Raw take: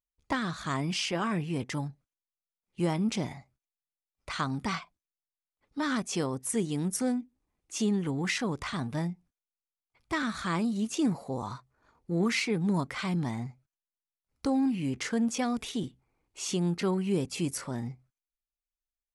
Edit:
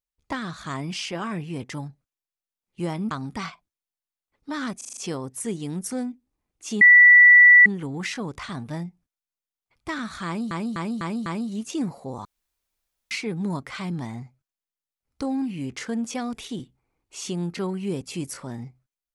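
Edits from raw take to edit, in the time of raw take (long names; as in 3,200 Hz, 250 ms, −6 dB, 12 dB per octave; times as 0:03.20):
0:03.11–0:04.40: remove
0:06.06: stutter 0.04 s, 6 plays
0:07.90: insert tone 1,960 Hz −8 dBFS 0.85 s
0:10.50–0:10.75: repeat, 5 plays
0:11.49–0:12.35: fill with room tone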